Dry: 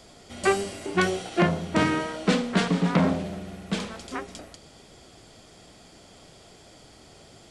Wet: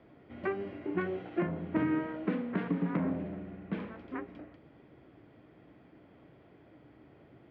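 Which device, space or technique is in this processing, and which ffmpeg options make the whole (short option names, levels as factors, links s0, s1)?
bass amplifier: -af "acompressor=threshold=0.0708:ratio=4,highpass=68,equalizer=f=130:t=q:w=4:g=5,equalizer=f=300:t=q:w=4:g=9,equalizer=f=740:t=q:w=4:g=-4,equalizer=f=1300:t=q:w=4:g=-3,lowpass=f=2200:w=0.5412,lowpass=f=2200:w=1.3066,volume=0.447"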